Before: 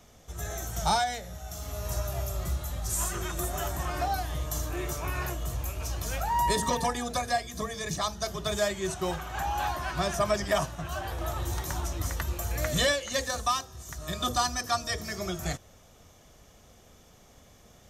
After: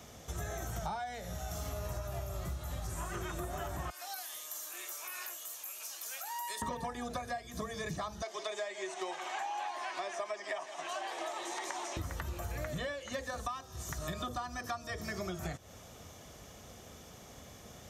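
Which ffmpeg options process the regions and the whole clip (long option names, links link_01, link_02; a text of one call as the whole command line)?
ffmpeg -i in.wav -filter_complex "[0:a]asettb=1/sr,asplit=3[link_01][link_02][link_03];[link_01]atrim=end=3.904[link_04];[link_02]atrim=start=3.9:end=6.62,asetpts=PTS-STARTPTS,afade=type=in:duration=0.004:curve=qsin,afade=type=out:start_time=2.716:duration=0.004:curve=qsin,highpass=300,aderivative[link_05];[link_03]atrim=start=6.616[link_06];[link_04][link_05]acrossfade=duration=0.004:curve1=hsin:curve2=qsin[link_07];[link_07][link_06]acrossfade=duration=0.004:curve1=qsin:curve2=hsin,asettb=1/sr,asplit=3[link_08][link_09][link_10];[link_08]atrim=end=8.224[link_11];[link_09]atrim=start=8.22:end=11.97,asetpts=PTS-STARTPTS,afade=type=in:duration=0.004:curve=qsin,afade=type=out:start_time=3.746:duration=0.004:curve=qsin,highpass=frequency=390:width=0.5412,highpass=frequency=390:width=1.3066,equalizer=frequency=500:width_type=q:width=4:gain=-8,equalizer=frequency=1400:width_type=q:width=4:gain=-9,equalizer=frequency=2100:width_type=q:width=4:gain=5,lowpass=frequency=9000:width=0.5412,lowpass=frequency=9000:width=1.3066,aecho=1:1:161:0.15,atrim=end_sample=165375[link_12];[link_10]atrim=start=11.966[link_13];[link_11][link_12]acrossfade=duration=0.004:curve1=hsin:curve2=qsin[link_14];[link_14][link_13]acrossfade=duration=0.004:curve1=qsin:curve2=hsin,acrossover=split=2700[link_15][link_16];[link_16]acompressor=threshold=-44dB:ratio=4:attack=1:release=60[link_17];[link_15][link_17]amix=inputs=2:normalize=0,highpass=62,acompressor=threshold=-40dB:ratio=10,volume=4.5dB" out.wav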